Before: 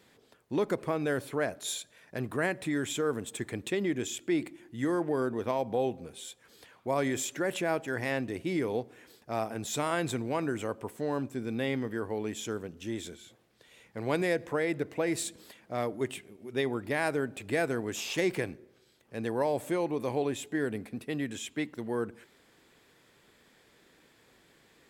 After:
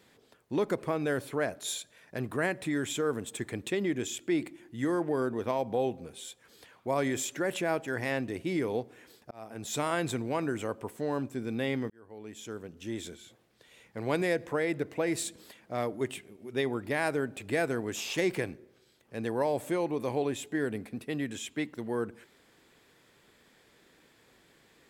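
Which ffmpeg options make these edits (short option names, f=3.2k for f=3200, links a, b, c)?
-filter_complex "[0:a]asplit=3[a][b][c];[a]atrim=end=9.31,asetpts=PTS-STARTPTS,afade=t=out:st=9.306:d=0.004:c=hsin[d];[b]atrim=start=9.31:end=11.9,asetpts=PTS-STARTPTS,afade=t=in:d=0.45,afade=t=out:st=2.586:d=0.004:c=hsin[e];[c]atrim=start=11.9,asetpts=PTS-STARTPTS,afade=t=in:d=1.13[f];[d][e][f]concat=n=3:v=0:a=1"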